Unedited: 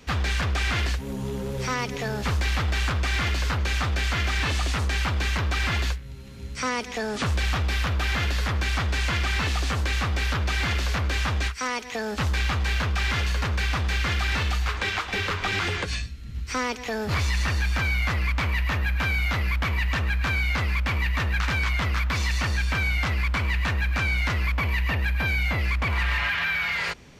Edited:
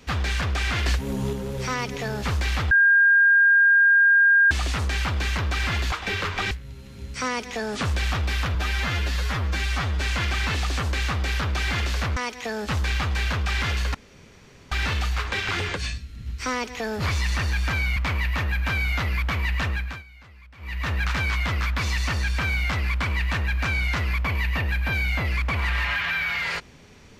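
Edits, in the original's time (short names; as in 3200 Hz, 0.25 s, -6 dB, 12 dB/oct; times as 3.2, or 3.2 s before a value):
0.86–1.33 gain +4 dB
2.71–4.51 bleep 1610 Hz -13 dBFS
7.96–8.93 stretch 1.5×
11.09–11.66 cut
13.44–14.21 room tone
14.98–15.57 move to 5.92
18.05–18.3 cut
20.02–21.26 dip -23.5 dB, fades 0.35 s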